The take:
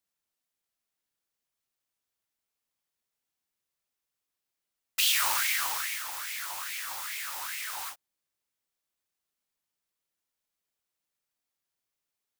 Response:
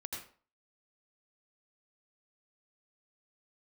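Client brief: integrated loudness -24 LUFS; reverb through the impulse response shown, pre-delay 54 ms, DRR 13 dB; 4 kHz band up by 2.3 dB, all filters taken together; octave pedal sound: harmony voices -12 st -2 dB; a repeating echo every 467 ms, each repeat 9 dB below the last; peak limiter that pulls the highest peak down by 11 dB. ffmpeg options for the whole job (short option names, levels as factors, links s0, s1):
-filter_complex "[0:a]equalizer=f=4000:t=o:g=3,alimiter=limit=0.0794:level=0:latency=1,aecho=1:1:467|934|1401|1868:0.355|0.124|0.0435|0.0152,asplit=2[s0][s1];[1:a]atrim=start_sample=2205,adelay=54[s2];[s1][s2]afir=irnorm=-1:irlink=0,volume=0.237[s3];[s0][s3]amix=inputs=2:normalize=0,asplit=2[s4][s5];[s5]asetrate=22050,aresample=44100,atempo=2,volume=0.794[s6];[s4][s6]amix=inputs=2:normalize=0,volume=2"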